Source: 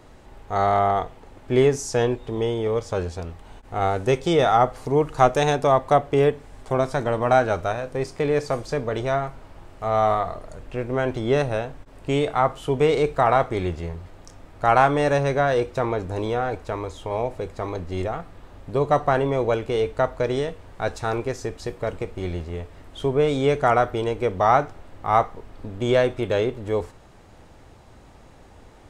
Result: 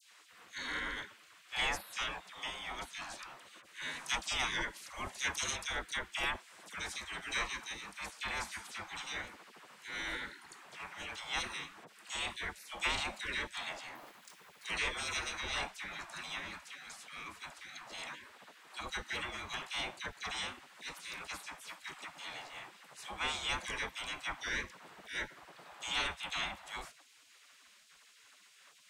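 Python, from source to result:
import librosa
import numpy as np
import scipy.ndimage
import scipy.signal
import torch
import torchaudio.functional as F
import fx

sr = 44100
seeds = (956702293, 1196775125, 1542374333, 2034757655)

y = fx.spec_gate(x, sr, threshold_db=-25, keep='weak')
y = fx.dispersion(y, sr, late='lows', ms=58.0, hz=1700.0)
y = fx.resample_bad(y, sr, factor=3, down='none', up='hold', at=(13.95, 14.65))
y = y * librosa.db_to_amplitude(1.0)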